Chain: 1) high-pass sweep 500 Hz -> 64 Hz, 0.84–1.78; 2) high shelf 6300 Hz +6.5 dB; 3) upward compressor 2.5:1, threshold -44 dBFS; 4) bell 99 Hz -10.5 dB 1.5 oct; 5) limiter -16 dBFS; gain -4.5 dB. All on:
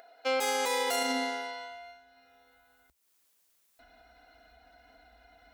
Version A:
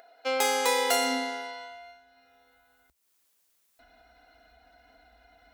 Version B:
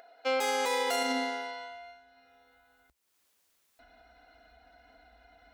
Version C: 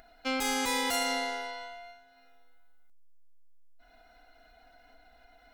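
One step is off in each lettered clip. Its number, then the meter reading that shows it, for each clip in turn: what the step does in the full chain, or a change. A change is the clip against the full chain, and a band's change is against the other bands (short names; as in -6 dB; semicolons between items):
5, crest factor change +8.5 dB; 2, 8 kHz band -3.5 dB; 1, 500 Hz band -5.5 dB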